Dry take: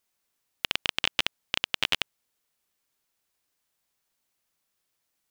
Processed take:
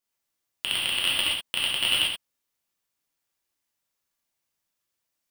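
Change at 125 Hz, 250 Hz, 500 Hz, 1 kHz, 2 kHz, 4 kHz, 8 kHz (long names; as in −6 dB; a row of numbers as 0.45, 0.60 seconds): +1.0, +0.5, −0.5, −0.5, +2.5, +5.5, +9.5 decibels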